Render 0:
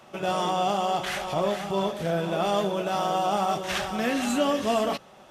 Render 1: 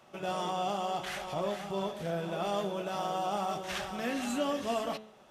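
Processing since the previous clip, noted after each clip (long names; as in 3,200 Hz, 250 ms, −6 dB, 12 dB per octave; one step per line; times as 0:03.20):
hum removal 108.3 Hz, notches 38
level −7.5 dB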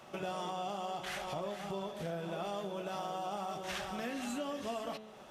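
downward compressor 4 to 1, threshold −43 dBFS, peak gain reduction 13.5 dB
level +5 dB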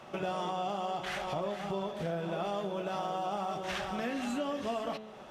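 high-shelf EQ 6,200 Hz −10.5 dB
level +4.5 dB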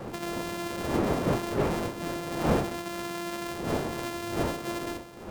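samples sorted by size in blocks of 128 samples
wind on the microphone 470 Hz −31 dBFS
low-shelf EQ 69 Hz −9 dB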